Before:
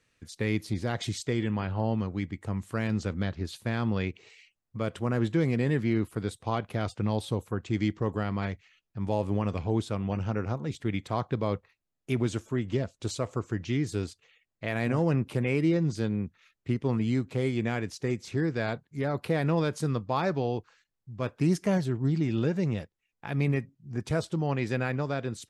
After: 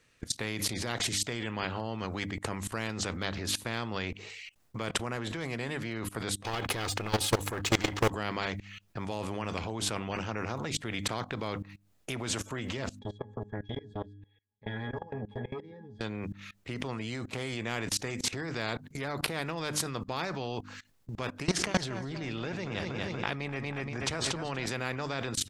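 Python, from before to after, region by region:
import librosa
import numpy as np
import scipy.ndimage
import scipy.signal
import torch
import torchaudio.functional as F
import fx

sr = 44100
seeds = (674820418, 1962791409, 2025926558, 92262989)

y = fx.chain(x, sr, fx.comb(ms=2.4, depth=0.54),
    fx.leveller(passes=2), at=(6.44, 8.1))
y = fx.chain(y, sr, fx.octave_resonator(note='G#', decay_s=0.22),
    fx.transformer_sat(knee_hz=350.0), at=(12.99, 16.01))
y = fx.chain(y, sr, fx.lowpass(hz=6000.0, slope=12),
    fx.echo_feedback(ms=237, feedback_pct=43, wet_db=-12.5),
    fx.sustainer(db_per_s=32.0), at=(21.43, 24.66))
y = fx.hum_notches(y, sr, base_hz=50, count=6)
y = fx.level_steps(y, sr, step_db=22)
y = fx.spectral_comp(y, sr, ratio=2.0)
y = F.gain(torch.from_numpy(y), 7.0).numpy()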